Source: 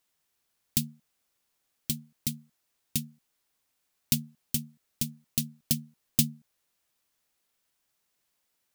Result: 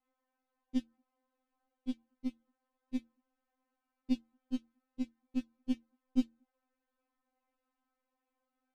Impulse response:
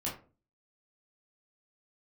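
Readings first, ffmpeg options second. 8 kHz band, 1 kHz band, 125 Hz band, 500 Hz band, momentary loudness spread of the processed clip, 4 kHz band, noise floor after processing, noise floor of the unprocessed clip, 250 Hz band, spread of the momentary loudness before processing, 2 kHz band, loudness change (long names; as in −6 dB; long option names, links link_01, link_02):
below −30 dB, can't be measured, below −25 dB, +0.5 dB, 8 LU, −19.5 dB, below −85 dBFS, −78 dBFS, +1.0 dB, 11 LU, −11.5 dB, −8.0 dB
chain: -af "lowpass=1000,afftfilt=real='re*3.46*eq(mod(b,12),0)':imag='im*3.46*eq(mod(b,12),0)':win_size=2048:overlap=0.75,volume=6.5dB"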